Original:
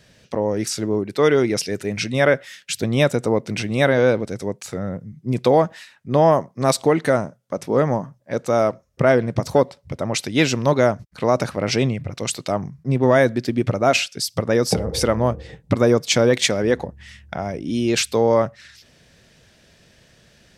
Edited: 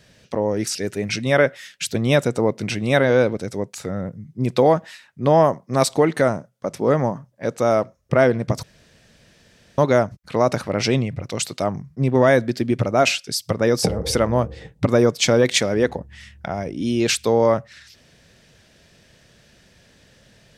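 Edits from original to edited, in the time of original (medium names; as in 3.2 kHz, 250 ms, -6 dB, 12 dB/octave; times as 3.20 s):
0.75–1.63 s: delete
9.51–10.66 s: room tone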